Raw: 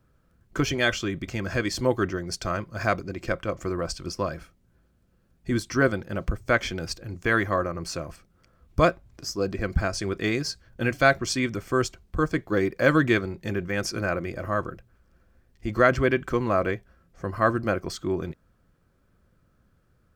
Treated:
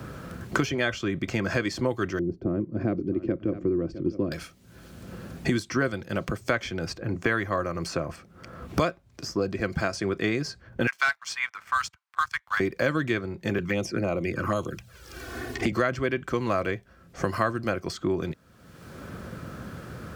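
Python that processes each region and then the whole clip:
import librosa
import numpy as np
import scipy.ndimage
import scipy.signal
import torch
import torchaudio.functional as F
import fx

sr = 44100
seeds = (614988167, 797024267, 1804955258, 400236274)

y = fx.chain(x, sr, fx.lowpass_res(hz=320.0, q=3.3),
    fx.echo_single(ms=658, db=-16.0), at=(2.19, 4.32))
y = fx.chain(y, sr, fx.steep_highpass(hz=900.0, slope=48),
    fx.leveller(passes=2),
    fx.upward_expand(threshold_db=-32.0, expansion=1.5), at=(10.87, 12.6))
y = fx.chain(y, sr, fx.env_flanger(rest_ms=2.9, full_db=-24.0),
    fx.band_squash(depth_pct=40), at=(13.58, 15.72))
y = scipy.signal.sosfilt(scipy.signal.butter(2, 78.0, 'highpass', fs=sr, output='sos'), y)
y = fx.high_shelf(y, sr, hz=8700.0, db=-6.0)
y = fx.band_squash(y, sr, depth_pct=100)
y = y * 10.0 ** (-1.5 / 20.0)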